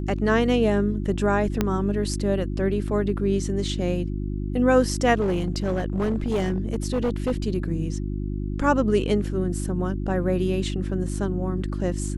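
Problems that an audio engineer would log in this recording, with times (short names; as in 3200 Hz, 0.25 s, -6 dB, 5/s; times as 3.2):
hum 50 Hz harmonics 7 -28 dBFS
1.61 pop -8 dBFS
5.2–7.32 clipped -19 dBFS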